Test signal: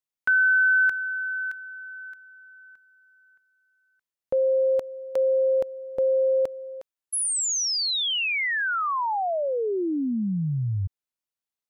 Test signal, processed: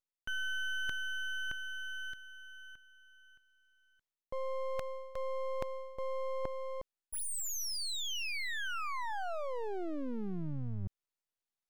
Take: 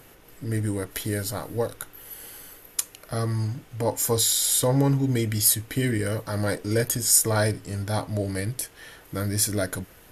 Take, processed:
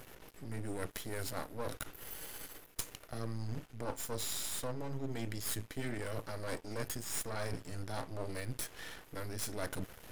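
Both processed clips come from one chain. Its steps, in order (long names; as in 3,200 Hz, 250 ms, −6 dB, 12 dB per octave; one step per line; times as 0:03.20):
high-shelf EQ 11,000 Hz −7 dB
reversed playback
downward compressor 6 to 1, threshold −35 dBFS
reversed playback
half-wave rectification
level +2 dB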